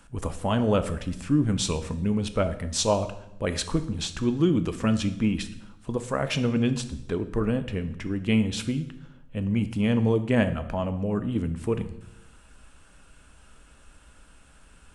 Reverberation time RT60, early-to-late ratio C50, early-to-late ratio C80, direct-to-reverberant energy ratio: 0.85 s, 12.5 dB, 15.5 dB, 9.0 dB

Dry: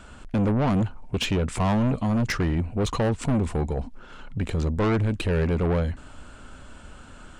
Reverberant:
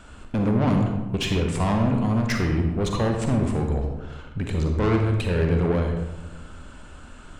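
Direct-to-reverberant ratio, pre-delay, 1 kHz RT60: 2.5 dB, 37 ms, 1.0 s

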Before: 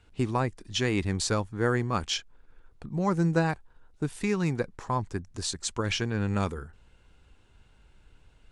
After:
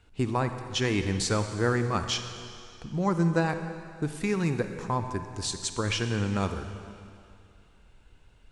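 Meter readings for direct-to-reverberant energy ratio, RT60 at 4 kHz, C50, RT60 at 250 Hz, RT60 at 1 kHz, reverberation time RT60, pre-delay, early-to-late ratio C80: 7.5 dB, 2.4 s, 8.0 dB, 2.4 s, 2.5 s, 2.5 s, 38 ms, 9.0 dB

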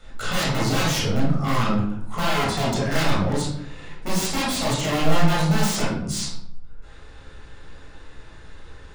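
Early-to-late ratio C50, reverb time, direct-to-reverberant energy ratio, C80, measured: 1.5 dB, 0.70 s, -6.5 dB, 6.5 dB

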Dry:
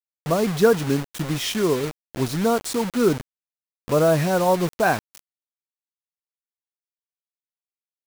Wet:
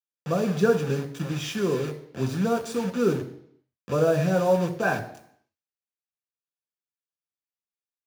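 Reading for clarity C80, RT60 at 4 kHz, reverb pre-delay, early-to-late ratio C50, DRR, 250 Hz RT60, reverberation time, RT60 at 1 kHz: 14.0 dB, 0.70 s, 3 ms, 11.5 dB, 4.5 dB, 0.70 s, 0.70 s, 0.70 s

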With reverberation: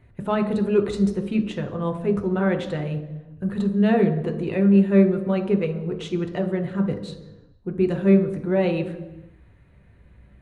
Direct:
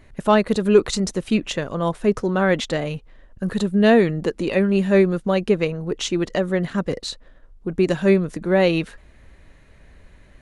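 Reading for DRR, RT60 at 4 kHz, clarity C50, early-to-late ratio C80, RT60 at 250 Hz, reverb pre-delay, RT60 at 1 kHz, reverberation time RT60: 3.5 dB, 0.95 s, 9.5 dB, 12.0 dB, 1.4 s, 3 ms, 1.0 s, 1.1 s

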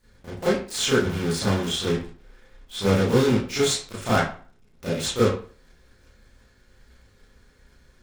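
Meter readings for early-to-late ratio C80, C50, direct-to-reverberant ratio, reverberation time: 9.0 dB, 2.5 dB, -11.0 dB, 0.45 s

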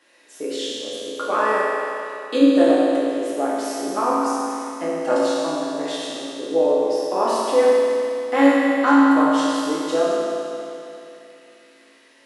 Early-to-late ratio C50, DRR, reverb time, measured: -3.5 dB, -8.5 dB, 2.8 s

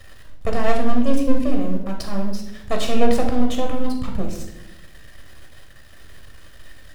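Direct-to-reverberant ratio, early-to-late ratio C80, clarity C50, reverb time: 1.5 dB, 9.5 dB, 6.0 dB, 0.90 s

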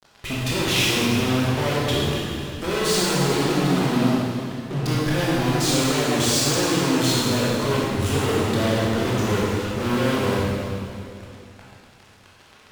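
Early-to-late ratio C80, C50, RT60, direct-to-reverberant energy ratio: -1.5 dB, -3.0 dB, 2.5 s, -7.0 dB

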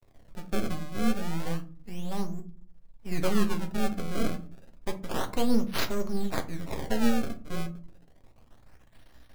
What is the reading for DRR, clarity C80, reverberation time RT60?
5.5 dB, 21.0 dB, 0.40 s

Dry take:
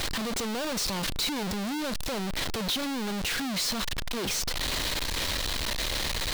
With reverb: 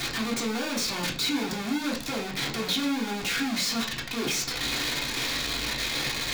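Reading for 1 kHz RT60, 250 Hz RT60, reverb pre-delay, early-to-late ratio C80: 0.40 s, 0.60 s, 3 ms, 15.0 dB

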